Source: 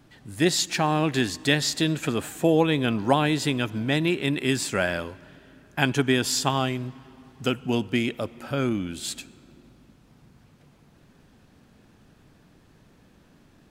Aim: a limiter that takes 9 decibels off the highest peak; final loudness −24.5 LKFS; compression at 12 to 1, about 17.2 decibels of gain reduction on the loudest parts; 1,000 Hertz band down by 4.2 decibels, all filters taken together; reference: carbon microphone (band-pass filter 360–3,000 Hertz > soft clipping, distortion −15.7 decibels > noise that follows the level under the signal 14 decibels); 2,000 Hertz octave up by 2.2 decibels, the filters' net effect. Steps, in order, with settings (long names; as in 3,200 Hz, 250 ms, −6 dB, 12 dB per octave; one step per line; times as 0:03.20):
parametric band 1,000 Hz −7 dB
parametric band 2,000 Hz +6 dB
downward compressor 12 to 1, threshold −33 dBFS
brickwall limiter −26.5 dBFS
band-pass filter 360–3,000 Hz
soft clipping −35 dBFS
noise that follows the level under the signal 14 dB
level +20.5 dB